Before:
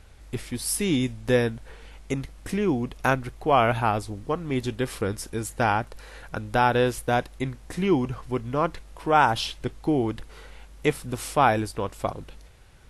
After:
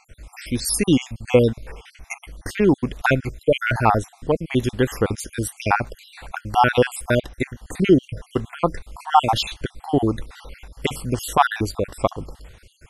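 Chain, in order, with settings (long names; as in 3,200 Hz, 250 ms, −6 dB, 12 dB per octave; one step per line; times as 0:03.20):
time-frequency cells dropped at random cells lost 55%
level +8 dB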